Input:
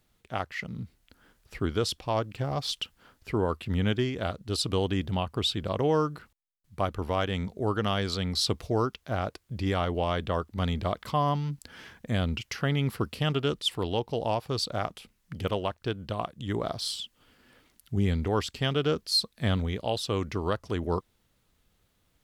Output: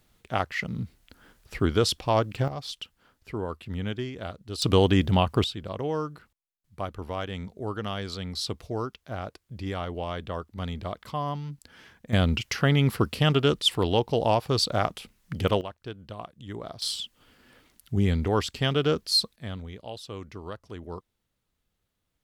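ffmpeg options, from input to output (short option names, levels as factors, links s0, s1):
-af "asetnsamples=n=441:p=0,asendcmd='2.48 volume volume -5dB;4.62 volume volume 7.5dB;5.44 volume volume -4.5dB;12.13 volume volume 5.5dB;15.61 volume volume -7dB;16.82 volume volume 2.5dB;19.36 volume volume -9.5dB',volume=1.78"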